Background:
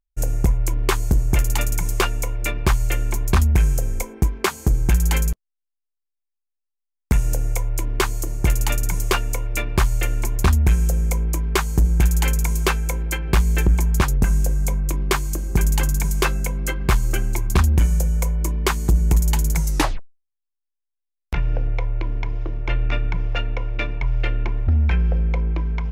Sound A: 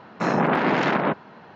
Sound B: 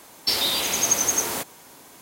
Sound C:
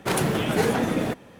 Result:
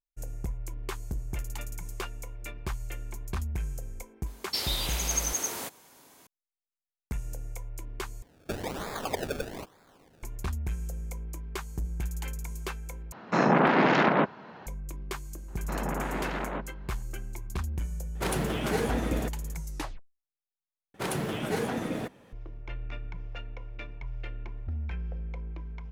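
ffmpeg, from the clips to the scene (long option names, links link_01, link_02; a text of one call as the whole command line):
ffmpeg -i bed.wav -i cue0.wav -i cue1.wav -i cue2.wav -filter_complex "[2:a]asplit=2[link_01][link_02];[1:a]asplit=2[link_03][link_04];[3:a]asplit=2[link_05][link_06];[0:a]volume=-16.5dB[link_07];[link_02]acrusher=samples=30:mix=1:aa=0.000001:lfo=1:lforange=30:lforate=1.1[link_08];[link_07]asplit=4[link_09][link_10][link_11][link_12];[link_09]atrim=end=8.224[link_13];[link_08]atrim=end=2.01,asetpts=PTS-STARTPTS,volume=-11.5dB[link_14];[link_10]atrim=start=10.226:end=13.124[link_15];[link_03]atrim=end=1.55,asetpts=PTS-STARTPTS,volume=-1dB[link_16];[link_11]atrim=start=14.666:end=20.944[link_17];[link_06]atrim=end=1.39,asetpts=PTS-STARTPTS,volume=-8dB[link_18];[link_12]atrim=start=22.326[link_19];[link_01]atrim=end=2.01,asetpts=PTS-STARTPTS,volume=-8.5dB,afade=type=in:duration=0.004:curve=hsin,afade=type=out:start_time=2.006:duration=0.004:curve=hsin,adelay=4260[link_20];[link_04]atrim=end=1.55,asetpts=PTS-STARTPTS,volume=-12.5dB,afade=type=in:duration=0.004:curve=hsin,afade=type=out:start_time=1.546:duration=0.004:curve=hsin,adelay=15480[link_21];[link_05]atrim=end=1.39,asetpts=PTS-STARTPTS,volume=-6.5dB,afade=type=in:duration=0.004:curve=hsin,afade=type=out:start_time=1.386:duration=0.004:curve=hsin,adelay=18150[link_22];[link_13][link_14]acrossfade=duration=0.004:curve1=hsin:curve2=hsin[link_23];[link_23][link_15]acrossfade=duration=0.004:curve1=hsin:curve2=hsin[link_24];[link_24][link_16]acrossfade=duration=0.004:curve1=hsin:curve2=hsin[link_25];[link_25][link_17]acrossfade=duration=0.004:curve1=hsin:curve2=hsin[link_26];[link_26][link_18]acrossfade=duration=0.004:curve1=hsin:curve2=hsin[link_27];[link_27][link_19]acrossfade=duration=0.004:curve1=hsin:curve2=hsin[link_28];[link_28][link_20][link_21][link_22]amix=inputs=4:normalize=0" out.wav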